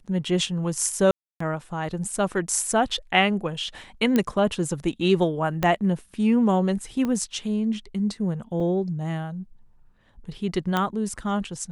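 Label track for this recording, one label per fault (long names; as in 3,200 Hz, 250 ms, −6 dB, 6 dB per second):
1.110000	1.400000	drop-out 294 ms
4.160000	4.160000	click −9 dBFS
5.630000	5.630000	click −9 dBFS
7.050000	7.050000	click −16 dBFS
8.600000	8.600000	drop-out 3.9 ms
10.770000	10.770000	click −10 dBFS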